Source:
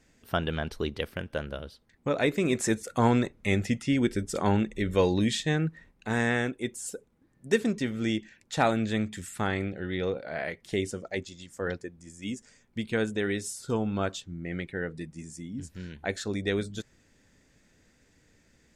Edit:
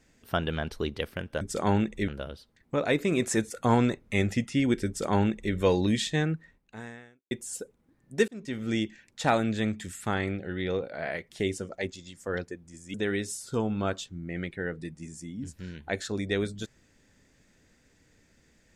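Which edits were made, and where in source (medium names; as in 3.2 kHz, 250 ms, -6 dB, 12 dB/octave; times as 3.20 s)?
4.20–4.87 s: copy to 1.41 s
5.56–6.64 s: fade out quadratic
7.61–8.00 s: fade in
12.27–13.10 s: delete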